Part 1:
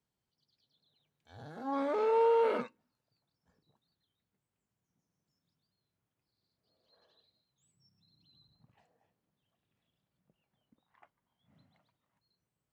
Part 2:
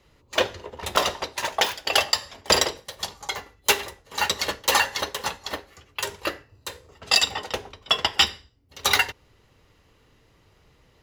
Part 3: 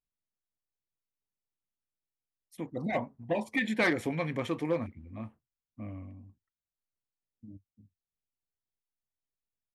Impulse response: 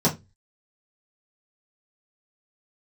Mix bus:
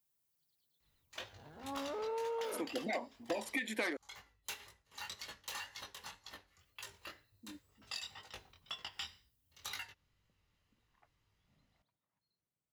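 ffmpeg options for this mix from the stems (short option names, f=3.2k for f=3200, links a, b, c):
-filter_complex "[0:a]bandreject=f=60:t=h:w=6,bandreject=f=120:t=h:w=6,bandreject=f=180:t=h:w=6,bandreject=f=240:t=h:w=6,volume=-8.5dB[a];[1:a]equalizer=f=460:w=0.8:g=-10,flanger=delay=18:depth=5.8:speed=2,acompressor=threshold=-29dB:ratio=2,adelay=800,volume=-15dB[b];[2:a]highpass=f=270:w=0.5412,highpass=f=270:w=1.3066,aemphasis=mode=production:type=50kf,volume=2dB,asplit=3[c][d][e];[c]atrim=end=3.97,asetpts=PTS-STARTPTS,afade=t=out:st=3.966:d=0.004:c=hsin[f];[d]atrim=start=3.97:end=6.59,asetpts=PTS-STARTPTS,volume=0[g];[e]atrim=start=6.59,asetpts=PTS-STARTPTS,afade=t=in:d=0.004:c=hsin[h];[f][g][h]concat=n=3:v=0:a=1[i];[a][b][i]amix=inputs=3:normalize=0,acompressor=threshold=-35dB:ratio=5"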